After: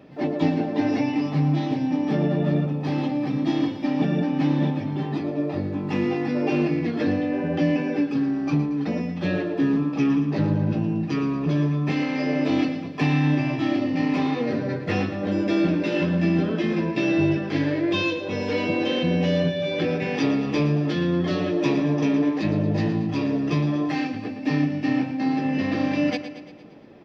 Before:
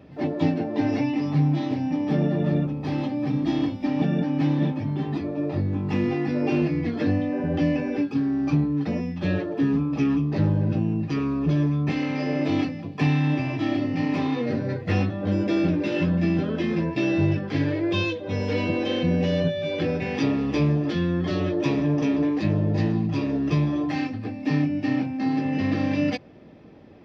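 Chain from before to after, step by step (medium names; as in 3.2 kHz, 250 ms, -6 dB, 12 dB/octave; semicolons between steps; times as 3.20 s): peaking EQ 69 Hz -14.5 dB 1.3 oct; feedback delay 115 ms, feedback 56%, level -11.5 dB; trim +2 dB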